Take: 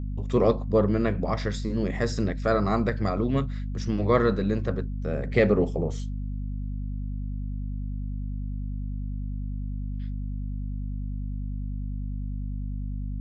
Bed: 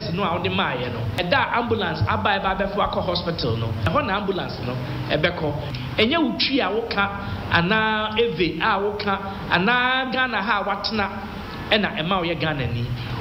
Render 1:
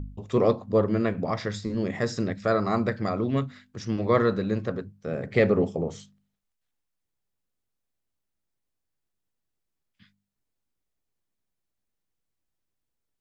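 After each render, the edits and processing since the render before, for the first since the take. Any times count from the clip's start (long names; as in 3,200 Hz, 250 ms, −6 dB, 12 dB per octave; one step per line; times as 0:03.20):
hum removal 50 Hz, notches 5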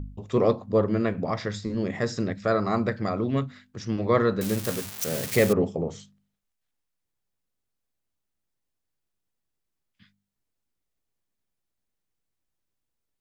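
0:04.41–0:05.53: spike at every zero crossing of −18 dBFS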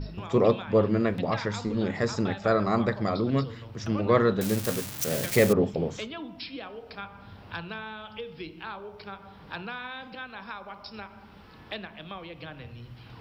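mix in bed −18.5 dB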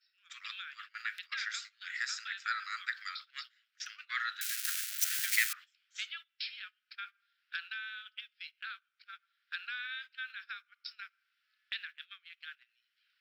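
Butterworth high-pass 1,400 Hz 72 dB per octave
noise gate −46 dBFS, range −20 dB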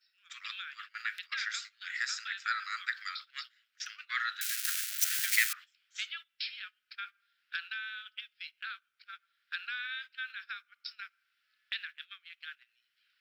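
level +2 dB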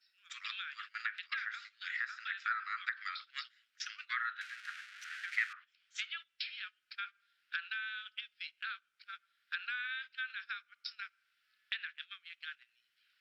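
treble cut that deepens with the level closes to 1,600 Hz, closed at −32 dBFS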